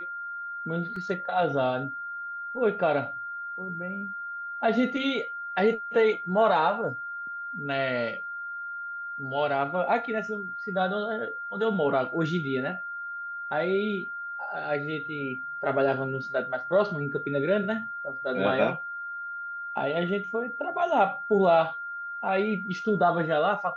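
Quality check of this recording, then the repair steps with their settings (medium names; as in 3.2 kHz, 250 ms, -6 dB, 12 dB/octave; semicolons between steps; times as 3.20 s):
whine 1.4 kHz -33 dBFS
0.96 s: dropout 3.1 ms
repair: band-stop 1.4 kHz, Q 30; interpolate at 0.96 s, 3.1 ms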